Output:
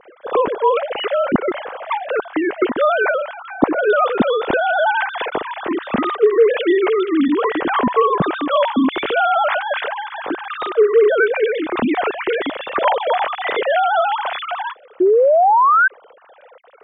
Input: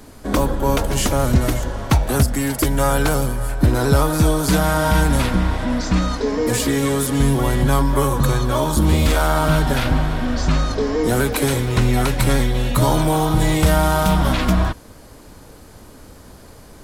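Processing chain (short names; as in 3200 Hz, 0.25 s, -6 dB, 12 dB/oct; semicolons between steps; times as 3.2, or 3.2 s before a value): sine-wave speech; painted sound rise, 15–15.88, 350–1600 Hz -11 dBFS; gain -1 dB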